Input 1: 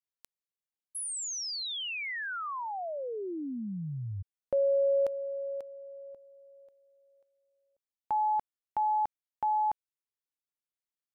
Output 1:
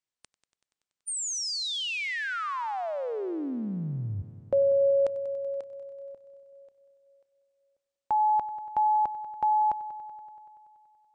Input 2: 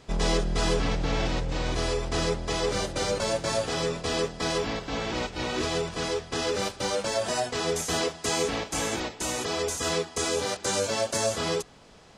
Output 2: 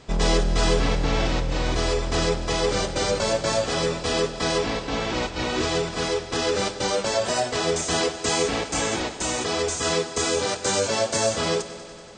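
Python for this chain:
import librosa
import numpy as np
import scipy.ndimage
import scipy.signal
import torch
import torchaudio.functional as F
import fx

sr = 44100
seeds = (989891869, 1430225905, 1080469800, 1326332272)

p1 = fx.brickwall_lowpass(x, sr, high_hz=9100.0)
p2 = p1 + fx.echo_heads(p1, sr, ms=95, heads='first and second', feedback_pct=68, wet_db=-19.0, dry=0)
y = p2 * librosa.db_to_amplitude(4.0)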